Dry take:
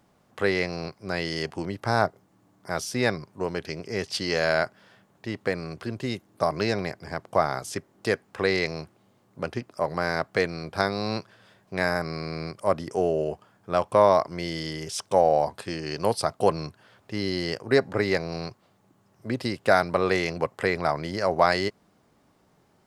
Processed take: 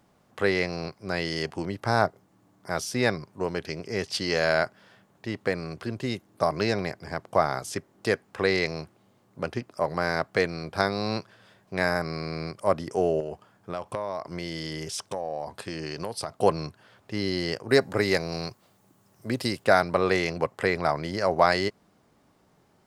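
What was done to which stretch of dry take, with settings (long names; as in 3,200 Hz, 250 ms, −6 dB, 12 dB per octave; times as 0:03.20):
0:13.20–0:16.38: downward compressor, threshold −28 dBFS
0:17.69–0:19.64: high-shelf EQ 6,300 Hz +12 dB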